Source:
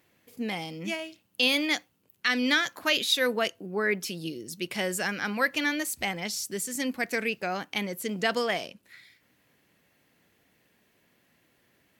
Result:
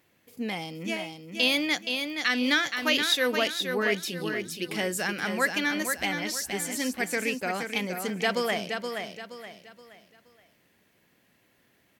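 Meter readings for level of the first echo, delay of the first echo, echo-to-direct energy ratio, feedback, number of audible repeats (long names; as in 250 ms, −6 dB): −6.0 dB, 473 ms, −5.5 dB, 35%, 4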